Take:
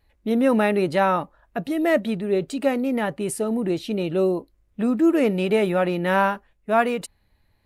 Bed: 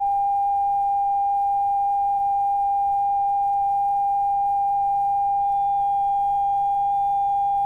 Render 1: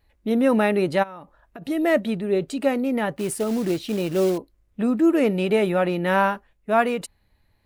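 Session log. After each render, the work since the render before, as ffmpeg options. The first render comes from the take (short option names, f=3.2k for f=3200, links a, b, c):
-filter_complex "[0:a]asplit=3[a][b][c];[a]afade=t=out:st=1.02:d=0.02[d];[b]acompressor=threshold=-35dB:ratio=12:attack=3.2:release=140:knee=1:detection=peak,afade=t=in:st=1.02:d=0.02,afade=t=out:st=1.61:d=0.02[e];[c]afade=t=in:st=1.61:d=0.02[f];[d][e][f]amix=inputs=3:normalize=0,asettb=1/sr,asplit=3[g][h][i];[g]atrim=end=3.164[j];[h]atrim=start=3.16:end=4.38,asetpts=PTS-STARTPTS,afade=t=in:d=0.004:c=qsin,afade=t=out:st=1.216:d=0.004:c=qsin,acrusher=bits=4:mode=log:mix=0:aa=0.000001[k];[i]atrim=start=4.376[l];[j][k]acrossfade=d=0.004:c1=hsin:c2=qsin[m];[m][l]acrossfade=d=0.004:c1=qsin:c2=hsin"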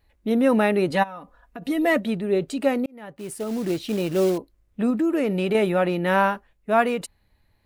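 -filter_complex "[0:a]asettb=1/sr,asplit=3[a][b][c];[a]atrim=end=0.904[d];[b]atrim=start=0.9:end=1.97,asetpts=PTS-STARTPTS,afade=t=in:d=0.004:c=qsin,afade=t=out:st=1.066:d=0.004:c=qsin,aecho=1:1:4.1:0.65,atrim=end_sample=47187[e];[c]atrim=start=1.966[f];[d][e]acrossfade=d=0.004:c1=hsin:c2=qsin[g];[g][f]acrossfade=d=0.004:c1=qsin:c2=hsin,asettb=1/sr,asplit=3[h][i][j];[h]atrim=end=4.904[k];[i]atrim=start=4.9:end=5.55,asetpts=PTS-STARTPTS,afade=t=in:d=0.004:c=qsin,afade=t=out:st=0.646:d=0.004:c=qsin,acompressor=threshold=-18dB:ratio=6:attack=3.2:release=140:knee=1:detection=peak[l];[j]atrim=start=5.546[m];[k][l]acrossfade=d=0.004:c1=hsin:c2=qsin[n];[n][m]acrossfade=d=0.004:c1=qsin:c2=hsin,asplit=2[o][p];[o]atrim=end=2.86,asetpts=PTS-STARTPTS,afade=t=out:st=2.856:d=0.004:c=hsin[q];[p]atrim=start=2.86,asetpts=PTS-STARTPTS,afade=t=in:d=1[r];[q][r]concat=n=2:v=0:a=1"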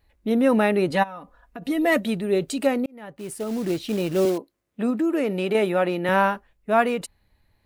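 -filter_complex "[0:a]asettb=1/sr,asplit=3[a][b][c];[a]atrim=end=1.924[d];[b]atrim=start=1.92:end=2.67,asetpts=PTS-STARTPTS,afade=t=in:d=0.004:c=qsin,afade=t=out:st=0.746:d=0.004:c=qsin,highshelf=f=3.8k:g=8[e];[c]atrim=start=2.666[f];[d][e]acrossfade=d=0.004:c1=hsin:c2=qsin[g];[g][f]acrossfade=d=0.004:c1=qsin:c2=hsin,asettb=1/sr,asplit=3[h][i][j];[h]atrim=end=4.254[k];[i]atrim=start=4.25:end=6.09,asetpts=PTS-STARTPTS,afade=t=in:d=0.004:c=qsin,afade=t=out:st=1.836:d=0.004:c=qsin,highpass=200[l];[j]atrim=start=6.086[m];[k][l]acrossfade=d=0.004:c1=hsin:c2=qsin[n];[n][m]acrossfade=d=0.004:c1=qsin:c2=hsin"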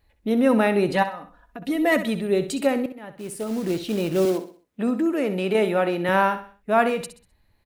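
-af "aecho=1:1:64|128|192|256:0.266|0.0984|0.0364|0.0135"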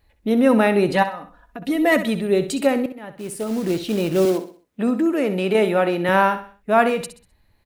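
-af "volume=3dB"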